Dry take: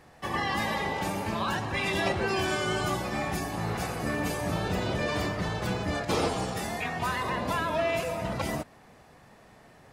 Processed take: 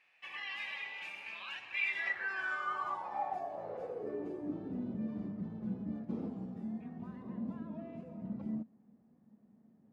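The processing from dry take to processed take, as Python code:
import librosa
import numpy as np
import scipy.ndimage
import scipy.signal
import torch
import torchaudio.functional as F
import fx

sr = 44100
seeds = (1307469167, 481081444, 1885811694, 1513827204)

y = fx.filter_sweep_bandpass(x, sr, from_hz=2500.0, to_hz=220.0, start_s=1.76, end_s=4.93, q=7.6)
y = y * librosa.db_to_amplitude(3.0)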